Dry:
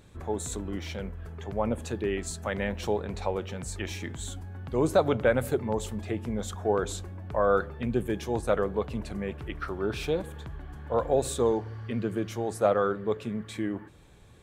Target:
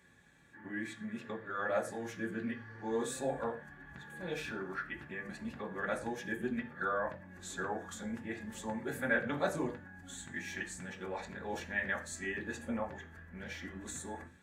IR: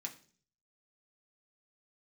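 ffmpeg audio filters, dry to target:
-filter_complex "[0:a]areverse,equalizer=frequency=1700:width_type=o:width=0.38:gain=14.5,bandreject=frequency=296.2:width_type=h:width=4,bandreject=frequency=592.4:width_type=h:width=4,bandreject=frequency=888.6:width_type=h:width=4,bandreject=frequency=1184.8:width_type=h:width=4,bandreject=frequency=1481:width_type=h:width=4,bandreject=frequency=1777.2:width_type=h:width=4,bandreject=frequency=2073.4:width_type=h:width=4,bandreject=frequency=2369.6:width_type=h:width=4,bandreject=frequency=2665.8:width_type=h:width=4,bandreject=frequency=2962:width_type=h:width=4,bandreject=frequency=3258.2:width_type=h:width=4,bandreject=frequency=3554.4:width_type=h:width=4,bandreject=frequency=3850.6:width_type=h:width=4,bandreject=frequency=4146.8:width_type=h:width=4,bandreject=frequency=4443:width_type=h:width=4,bandreject=frequency=4739.2:width_type=h:width=4,bandreject=frequency=5035.4:width_type=h:width=4,bandreject=frequency=5331.6:width_type=h:width=4,bandreject=frequency=5627.8:width_type=h:width=4,bandreject=frequency=5924:width_type=h:width=4,bandreject=frequency=6220.2:width_type=h:width=4,bandreject=frequency=6516.4:width_type=h:width=4,bandreject=frequency=6812.6:width_type=h:width=4,bandreject=frequency=7108.8:width_type=h:width=4,bandreject=frequency=7405:width_type=h:width=4,bandreject=frequency=7701.2:width_type=h:width=4,bandreject=frequency=7997.4:width_type=h:width=4,bandreject=frequency=8293.6:width_type=h:width=4,bandreject=frequency=8589.8:width_type=h:width=4,bandreject=frequency=8886:width_type=h:width=4,bandreject=frequency=9182.2:width_type=h:width=4,bandreject=frequency=9478.4:width_type=h:width=4,bandreject=frequency=9774.6:width_type=h:width=4,bandreject=frequency=10070.8:width_type=h:width=4,bandreject=frequency=10367:width_type=h:width=4,bandreject=frequency=10663.2:width_type=h:width=4[link_01];[1:a]atrim=start_sample=2205,afade=type=out:start_time=0.17:duration=0.01,atrim=end_sample=7938[link_02];[link_01][link_02]afir=irnorm=-1:irlink=0,volume=-6dB"

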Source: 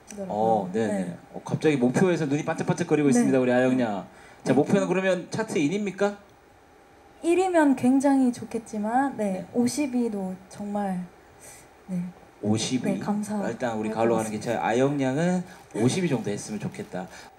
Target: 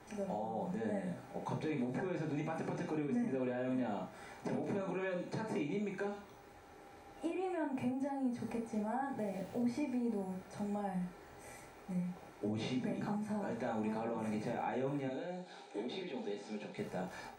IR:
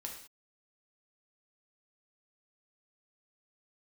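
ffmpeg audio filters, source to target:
-filter_complex "[0:a]acrossover=split=3300[link_01][link_02];[link_02]acompressor=threshold=-53dB:ratio=4:attack=1:release=60[link_03];[link_01][link_03]amix=inputs=2:normalize=0,alimiter=limit=-20.5dB:level=0:latency=1:release=29,acompressor=threshold=-31dB:ratio=6,asettb=1/sr,asplit=3[link_04][link_05][link_06];[link_04]atrim=end=9.184[link_07];[link_05]atrim=start=9.18:end=9.62,asetpts=PTS-STARTPTS,afade=type=in:duration=0.004:curve=qsin,afade=type=out:start_time=0.436:duration=0.004:curve=qsin,aeval=exprs='val(0)*gte(abs(val(0)),0.00355)':channel_layout=same[link_08];[link_06]atrim=start=9.616[link_09];[link_07][link_08]acrossfade=duration=0.004:curve1=hsin:curve2=qsin[link_10];[link_10][link_09]acrossfade=duration=0.004:curve1=qsin:curve2=hsin,asettb=1/sr,asplit=3[link_11][link_12][link_13];[link_11]atrim=end=15.084[link_14];[link_12]atrim=start=15.08:end=16.78,asetpts=PTS-STARTPTS,afade=type=in:duration=0.004:curve=qsin,afade=type=out:start_time=1.696:duration=0.004:curve=qsin,highpass=frequency=240:width=0.5412,highpass=frequency=240:width=1.3066,equalizer=frequency=310:width_type=q:width=4:gain=-5,equalizer=frequency=620:width_type=q:width=4:gain=-3,equalizer=frequency=1100:width_type=q:width=4:gain=-9,equalizer=frequency=1900:width_type=q:width=4:gain=-6,equalizer=frequency=3800:width_type=q:width=4:gain=7,equalizer=frequency=5900:width_type=q:width=4:gain=-5,lowpass=frequency=7600:width=0.5412,lowpass=frequency=7600:width=1.3066[link_15];[link_13]atrim=start=16.776[link_16];[link_14][link_15]acrossfade=duration=0.004:curve1=hsin:curve2=qsin[link_17];[link_17][link_16]acrossfade=duration=0.004:curve1=qsin:curve2=hsin[link_18];[1:a]atrim=start_sample=2205,atrim=end_sample=3528[link_19];[link_18][link_19]afir=irnorm=-1:irlink=0,volume=-1dB"

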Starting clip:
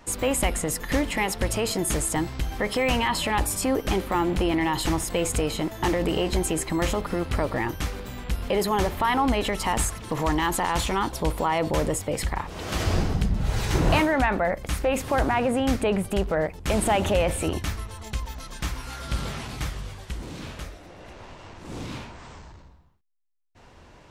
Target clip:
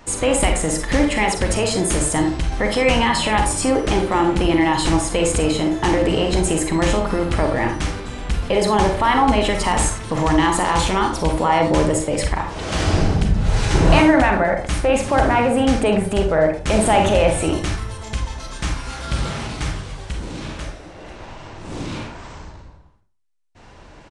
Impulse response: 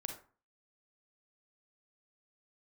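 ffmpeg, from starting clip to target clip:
-filter_complex "[1:a]atrim=start_sample=2205[link_01];[0:a][link_01]afir=irnorm=-1:irlink=0,aresample=22050,aresample=44100,volume=8dB"

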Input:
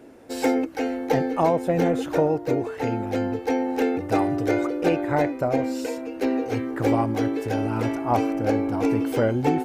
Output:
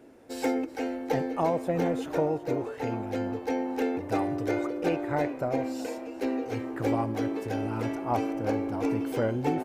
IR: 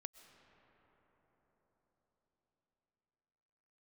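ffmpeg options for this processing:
-filter_complex "[0:a]asplit=7[link_01][link_02][link_03][link_04][link_05][link_06][link_07];[link_02]adelay=377,afreqshift=88,volume=-18.5dB[link_08];[link_03]adelay=754,afreqshift=176,volume=-22.7dB[link_09];[link_04]adelay=1131,afreqshift=264,volume=-26.8dB[link_10];[link_05]adelay=1508,afreqshift=352,volume=-31dB[link_11];[link_06]adelay=1885,afreqshift=440,volume=-35.1dB[link_12];[link_07]adelay=2262,afreqshift=528,volume=-39.3dB[link_13];[link_01][link_08][link_09][link_10][link_11][link_12][link_13]amix=inputs=7:normalize=0,asplit=2[link_14][link_15];[1:a]atrim=start_sample=2205,afade=type=out:start_time=0.37:duration=0.01,atrim=end_sample=16758[link_16];[link_15][link_16]afir=irnorm=-1:irlink=0,volume=-3.5dB[link_17];[link_14][link_17]amix=inputs=2:normalize=0,volume=-8.5dB"

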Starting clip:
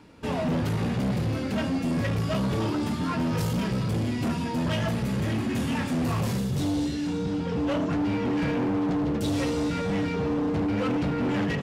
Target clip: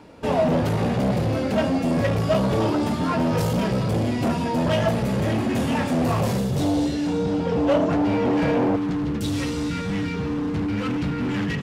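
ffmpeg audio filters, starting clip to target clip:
ffmpeg -i in.wav -af "asetnsamples=nb_out_samples=441:pad=0,asendcmd='8.76 equalizer g -9',equalizer=frequency=620:width=1.2:gain=8,volume=3dB" out.wav

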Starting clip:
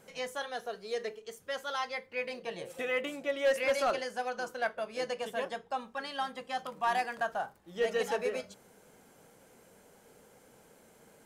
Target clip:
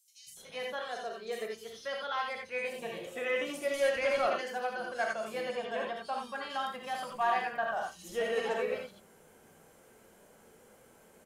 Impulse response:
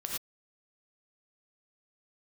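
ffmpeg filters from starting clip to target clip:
-filter_complex "[0:a]acrossover=split=160|4500[link_01][link_02][link_03];[link_01]adelay=270[link_04];[link_02]adelay=370[link_05];[link_04][link_05][link_03]amix=inputs=3:normalize=0[link_06];[1:a]atrim=start_sample=2205,afade=type=out:start_time=0.14:duration=0.01,atrim=end_sample=6615[link_07];[link_06][link_07]afir=irnorm=-1:irlink=0"

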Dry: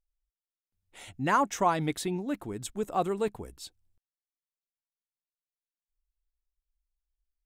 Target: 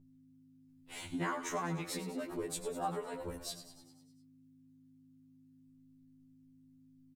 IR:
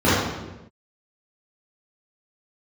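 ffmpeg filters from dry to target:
-filter_complex "[0:a]adynamicequalizer=threshold=0.00447:dfrequency=1900:dqfactor=3.1:tfrequency=1900:tqfactor=3.1:attack=5:release=100:ratio=0.375:range=2.5:mode=boostabove:tftype=bell,acompressor=threshold=-36dB:ratio=12,asplit=8[link_01][link_02][link_03][link_04][link_05][link_06][link_07][link_08];[link_02]adelay=104,afreqshift=52,volume=-11.5dB[link_09];[link_03]adelay=208,afreqshift=104,volume=-15.9dB[link_10];[link_04]adelay=312,afreqshift=156,volume=-20.4dB[link_11];[link_05]adelay=416,afreqshift=208,volume=-24.8dB[link_12];[link_06]adelay=520,afreqshift=260,volume=-29.2dB[link_13];[link_07]adelay=624,afreqshift=312,volume=-33.7dB[link_14];[link_08]adelay=728,afreqshift=364,volume=-38.1dB[link_15];[link_01][link_09][link_10][link_11][link_12][link_13][link_14][link_15]amix=inputs=8:normalize=0,asplit=2[link_16][link_17];[link_17]asetrate=58866,aresample=44100,atempo=0.749154,volume=-16dB[link_18];[link_16][link_18]amix=inputs=2:normalize=0,aeval=exprs='val(0)+0.00126*(sin(2*PI*50*n/s)+sin(2*PI*2*50*n/s)/2+sin(2*PI*3*50*n/s)/3+sin(2*PI*4*50*n/s)/4+sin(2*PI*5*50*n/s)/5)':channel_layout=same,asplit=2[link_19][link_20];[1:a]atrim=start_sample=2205,atrim=end_sample=3528[link_21];[link_20][link_21]afir=irnorm=-1:irlink=0,volume=-37.5dB[link_22];[link_19][link_22]amix=inputs=2:normalize=0,asetrate=45938,aresample=44100,afftfilt=real='re*2*eq(mod(b,4),0)':imag='im*2*eq(mod(b,4),0)':win_size=2048:overlap=0.75,volume=4dB"

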